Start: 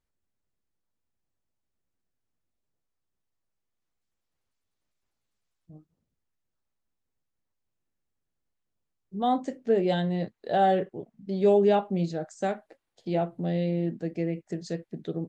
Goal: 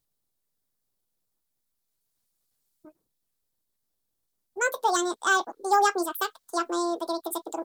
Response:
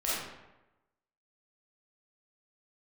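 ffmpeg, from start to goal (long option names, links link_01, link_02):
-af "asetrate=88200,aresample=44100,aexciter=amount=3.1:drive=5.7:freq=3700"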